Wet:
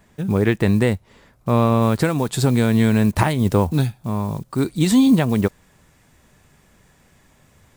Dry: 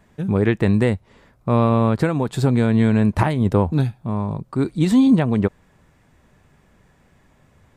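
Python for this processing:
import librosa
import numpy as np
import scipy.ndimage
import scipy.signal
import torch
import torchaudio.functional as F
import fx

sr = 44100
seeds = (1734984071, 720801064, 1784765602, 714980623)

y = fx.block_float(x, sr, bits=7)
y = fx.high_shelf(y, sr, hz=3500.0, db=fx.steps((0.0, 6.5), (1.81, 11.5)))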